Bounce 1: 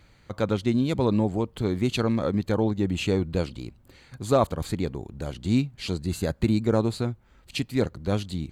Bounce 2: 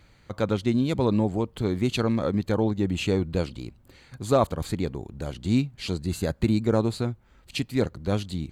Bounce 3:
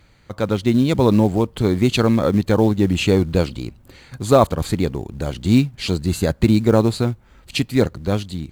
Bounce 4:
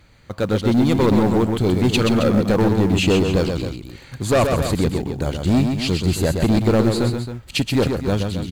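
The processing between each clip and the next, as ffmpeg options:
-af anull
-filter_complex "[0:a]dynaudnorm=f=110:g=11:m=5.5dB,asplit=2[a][b];[b]acrusher=bits=5:mode=log:mix=0:aa=0.000001,volume=-5dB[c];[a][c]amix=inputs=2:normalize=0,volume=-1dB"
-filter_complex "[0:a]asoftclip=type=hard:threshold=-13.5dB,asplit=2[a][b];[b]aecho=0:1:127|269:0.531|0.299[c];[a][c]amix=inputs=2:normalize=0,volume=1dB"

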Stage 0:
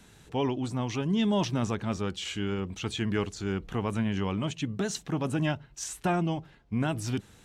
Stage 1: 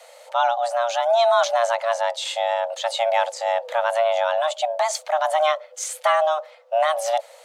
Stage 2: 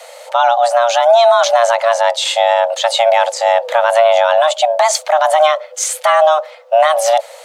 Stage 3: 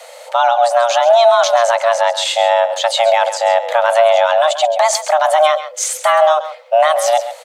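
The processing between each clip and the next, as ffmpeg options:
-af "afreqshift=460,equalizer=f=130:t=o:w=1.6:g=13.5,volume=7.5dB"
-af "alimiter=level_in=12dB:limit=-1dB:release=50:level=0:latency=1,volume=-1dB"
-af "aecho=1:1:134:0.237,volume=-1dB"

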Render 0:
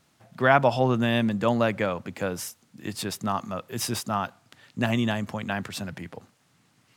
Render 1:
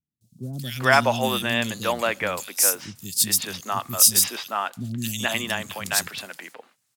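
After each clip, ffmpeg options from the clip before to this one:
-filter_complex "[0:a]agate=range=-18dB:threshold=-53dB:ratio=16:detection=peak,acrossover=split=280|3400[a][b][c];[c]adelay=210[d];[b]adelay=420[e];[a][e][d]amix=inputs=3:normalize=0,crystalizer=i=8.5:c=0,volume=-2.5dB"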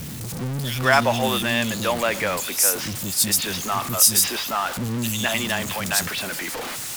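-af "aeval=exprs='val(0)+0.5*0.0631*sgn(val(0))':c=same,volume=-1dB"

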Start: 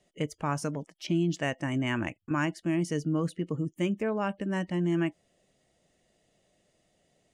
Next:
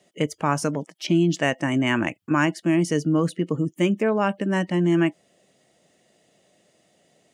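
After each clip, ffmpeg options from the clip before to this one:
-af "highpass=150,volume=8.5dB"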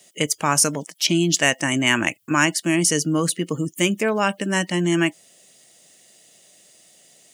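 -af "crystalizer=i=7:c=0,volume=-1dB"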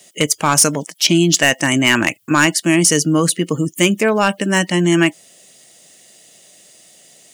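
-af "asoftclip=type=hard:threshold=-10.5dB,volume=6dB"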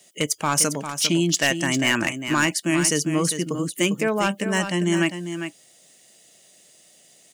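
-af "aecho=1:1:401:0.355,volume=-7.5dB"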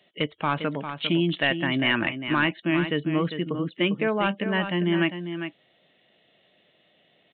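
-af "aresample=8000,aresample=44100,volume=-2dB"

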